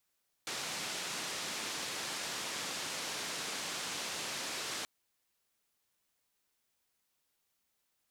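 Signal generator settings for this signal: noise band 150–6400 Hz, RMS -39.5 dBFS 4.38 s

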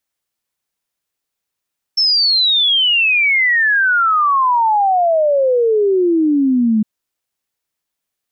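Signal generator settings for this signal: log sweep 5400 Hz -> 210 Hz 4.86 s -10.5 dBFS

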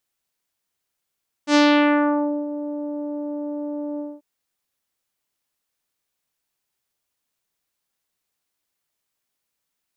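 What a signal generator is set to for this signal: synth note saw D4 24 dB/oct, low-pass 680 Hz, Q 1.1, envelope 3.5 oct, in 0.85 s, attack 78 ms, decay 0.92 s, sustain -14.5 dB, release 0.22 s, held 2.52 s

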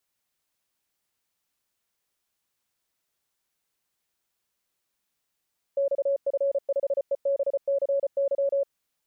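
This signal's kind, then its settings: Morse "XF5EBCY" 34 wpm 556 Hz -21 dBFS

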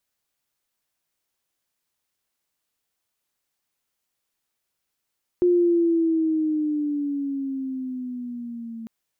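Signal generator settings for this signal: gliding synth tone sine, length 3.45 s, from 357 Hz, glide -8 st, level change -18 dB, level -14.5 dB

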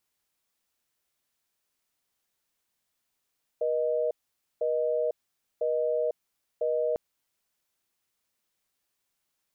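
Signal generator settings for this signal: call progress tone busy tone, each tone -27 dBFS 3.35 s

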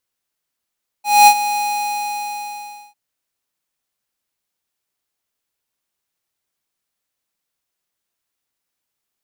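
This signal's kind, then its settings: ADSR square 828 Hz, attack 0.23 s, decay 67 ms, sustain -13.5 dB, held 0.52 s, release 1.38 s -6 dBFS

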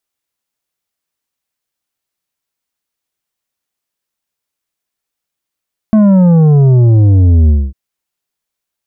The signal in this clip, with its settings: sub drop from 220 Hz, over 1.80 s, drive 8 dB, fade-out 0.24 s, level -5 dB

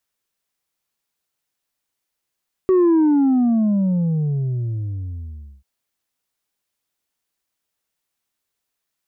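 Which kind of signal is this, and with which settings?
sub drop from 380 Hz, over 2.94 s, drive 3 dB, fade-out 2.80 s, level -12 dB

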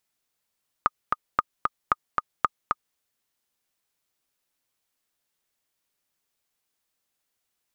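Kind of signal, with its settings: metronome 227 bpm, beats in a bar 2, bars 4, 1230 Hz, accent 3 dB -6 dBFS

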